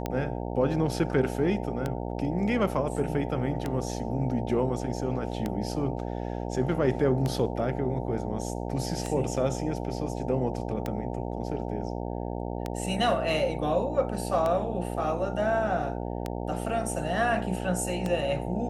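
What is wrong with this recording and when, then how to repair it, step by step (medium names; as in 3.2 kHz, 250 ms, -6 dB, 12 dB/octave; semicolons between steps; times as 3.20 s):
buzz 60 Hz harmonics 15 -33 dBFS
tick 33 1/3 rpm -16 dBFS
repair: de-click; de-hum 60 Hz, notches 15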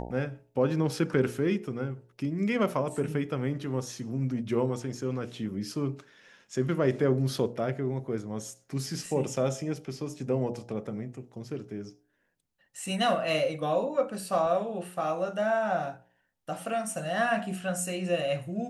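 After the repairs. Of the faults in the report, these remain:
nothing left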